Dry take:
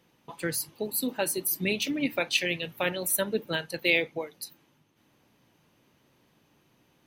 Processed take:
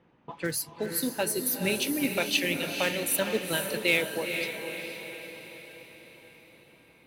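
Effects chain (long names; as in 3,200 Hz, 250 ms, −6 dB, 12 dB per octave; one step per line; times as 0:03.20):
one scale factor per block 5 bits
low-pass that shuts in the quiet parts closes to 1,800 Hz, open at −26.5 dBFS
in parallel at −3 dB: downward compressor, threshold −40 dBFS, peak gain reduction 19.5 dB
on the sum: feedback delay with all-pass diffusion 468 ms, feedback 54%, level −6 dB
level −1.5 dB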